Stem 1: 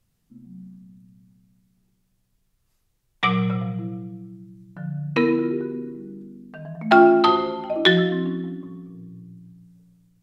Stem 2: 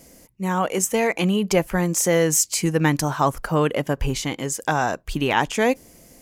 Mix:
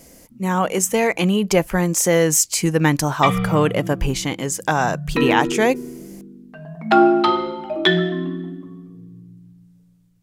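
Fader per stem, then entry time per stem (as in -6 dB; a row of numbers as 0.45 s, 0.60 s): 0.0 dB, +2.5 dB; 0.00 s, 0.00 s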